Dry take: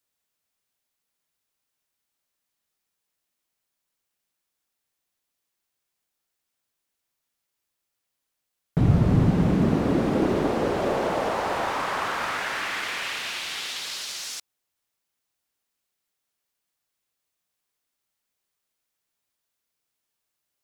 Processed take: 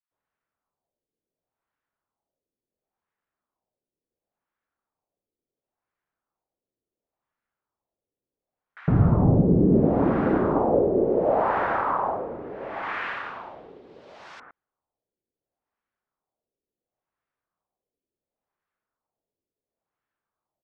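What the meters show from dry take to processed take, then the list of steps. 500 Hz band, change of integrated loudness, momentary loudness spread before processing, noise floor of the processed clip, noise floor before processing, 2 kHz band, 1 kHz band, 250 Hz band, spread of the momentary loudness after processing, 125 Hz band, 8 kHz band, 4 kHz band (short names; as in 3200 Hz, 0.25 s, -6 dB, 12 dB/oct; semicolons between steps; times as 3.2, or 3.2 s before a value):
+3.5 dB, +2.5 dB, 10 LU, under -85 dBFS, -82 dBFS, -4.5 dB, +2.0 dB, +1.5 dB, 15 LU, +0.5 dB, under -30 dB, under -15 dB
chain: LFO low-pass sine 0.71 Hz 400–1600 Hz; bands offset in time highs, lows 0.11 s, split 1500 Hz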